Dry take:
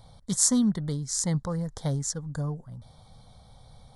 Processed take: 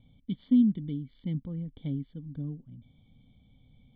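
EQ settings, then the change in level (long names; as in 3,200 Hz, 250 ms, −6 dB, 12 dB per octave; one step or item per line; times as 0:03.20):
formant resonators in series i
high-shelf EQ 2,600 Hz +9 dB
+4.5 dB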